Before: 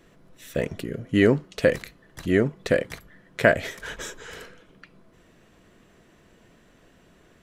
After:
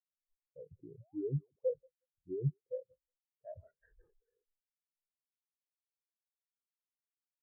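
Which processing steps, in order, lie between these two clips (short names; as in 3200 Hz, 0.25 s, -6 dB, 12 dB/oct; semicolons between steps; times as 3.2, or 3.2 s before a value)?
bell 220 Hz -10.5 dB 0.35 oct; feedback echo 0.183 s, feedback 37%, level -21.5 dB; reverse; compressor 6:1, threshold -28 dBFS, peak gain reduction 15.5 dB; reverse; painted sound rise, 1–1.64, 520–4800 Hz -42 dBFS; sample-and-hold 13×; wow and flutter 25 cents; limiter -25.5 dBFS, peak gain reduction 7 dB; high shelf 3200 Hz -8.5 dB; spectral expander 4:1; gain +2.5 dB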